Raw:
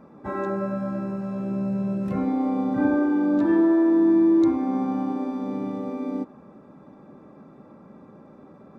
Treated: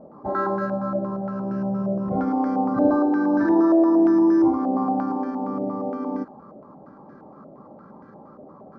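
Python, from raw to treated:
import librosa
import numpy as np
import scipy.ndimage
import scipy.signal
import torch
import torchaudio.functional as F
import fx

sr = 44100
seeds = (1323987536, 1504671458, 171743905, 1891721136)

y = np.repeat(scipy.signal.resample_poly(x, 1, 8), 8)[:len(x)]
y = fx.filter_held_lowpass(y, sr, hz=8.6, low_hz=650.0, high_hz=1600.0)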